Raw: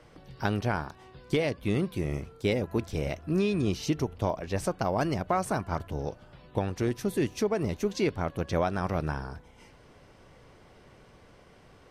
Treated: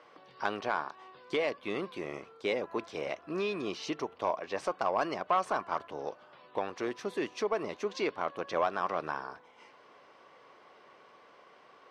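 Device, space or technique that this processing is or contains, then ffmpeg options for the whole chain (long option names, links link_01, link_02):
intercom: -af "highpass=440,lowpass=4400,equalizer=frequency=1100:width_type=o:width=0.29:gain=7.5,asoftclip=type=tanh:threshold=-17dB"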